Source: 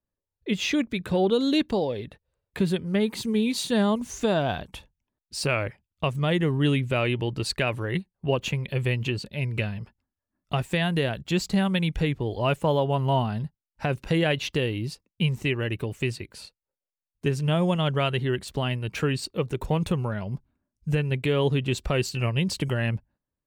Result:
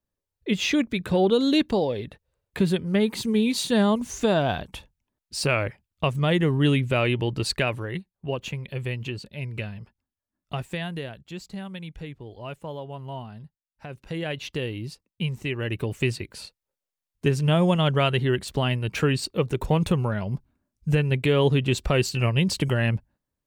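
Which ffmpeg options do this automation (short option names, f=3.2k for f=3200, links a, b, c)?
-af "volume=17.5dB,afade=t=out:st=7.56:d=0.4:silence=0.473151,afade=t=out:st=10.61:d=0.64:silence=0.398107,afade=t=in:st=13.89:d=0.75:silence=0.354813,afade=t=in:st=15.49:d=0.44:silence=0.473151"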